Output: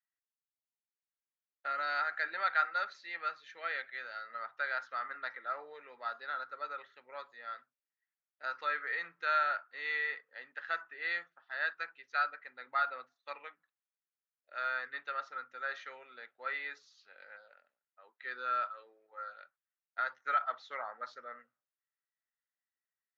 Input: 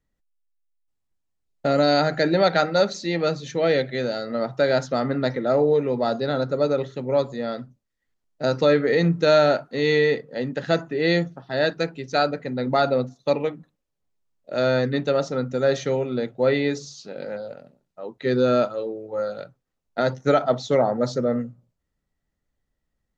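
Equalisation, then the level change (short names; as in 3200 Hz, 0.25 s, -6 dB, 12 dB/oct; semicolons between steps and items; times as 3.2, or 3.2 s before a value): ladder band-pass 1900 Hz, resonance 40%; air absorption 64 m; dynamic EQ 1200 Hz, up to +7 dB, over -53 dBFS, Q 1.9; 0.0 dB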